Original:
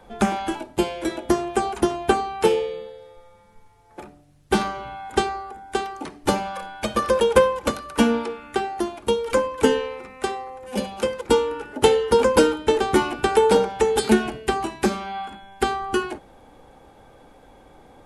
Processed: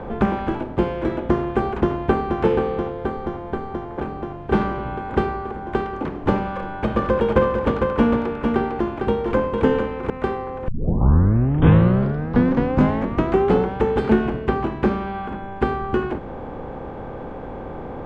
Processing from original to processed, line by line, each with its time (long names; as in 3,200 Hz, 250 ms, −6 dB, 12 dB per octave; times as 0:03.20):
0:01.80–0:02.40: delay throw 480 ms, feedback 70%, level −8.5 dB
0:02.90–0:04.00: notch filter 2,600 Hz, Q 5.9
0:06.42–0:10.10: single-tap delay 453 ms −7.5 dB
0:10.68: tape start 3.09 s
0:14.38–0:15.08: low-pass filter 7,100 Hz
whole clip: compressor on every frequency bin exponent 0.6; low-pass filter 1,500 Hz 12 dB per octave; dynamic equaliser 660 Hz, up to −5 dB, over −29 dBFS, Q 0.71